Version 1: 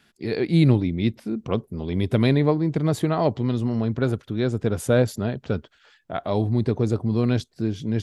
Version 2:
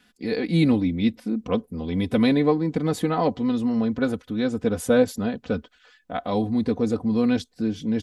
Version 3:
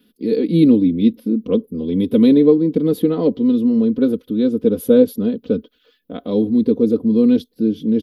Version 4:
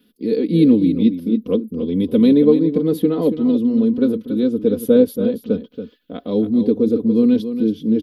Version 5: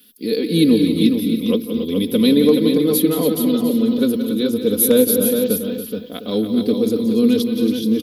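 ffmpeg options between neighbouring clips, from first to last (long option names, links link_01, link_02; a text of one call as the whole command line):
ffmpeg -i in.wav -af "aecho=1:1:4:0.77,volume=-1.5dB" out.wav
ffmpeg -i in.wav -af "firequalizer=gain_entry='entry(120,0);entry(190,9);entry(270,12);entry(460,12);entry(750,-9);entry(1100,-3);entry(1800,-8);entry(3300,4);entry(7500,-12);entry(12000,14)':delay=0.05:min_phase=1,volume=-3dB" out.wav
ffmpeg -i in.wav -af "aecho=1:1:280:0.316,volume=-1dB" out.wav
ffmpeg -i in.wav -af "aecho=1:1:175|225|425|760:0.316|0.126|0.501|0.119,asoftclip=type=hard:threshold=-2dB,crystalizer=i=8.5:c=0,volume=-2.5dB" out.wav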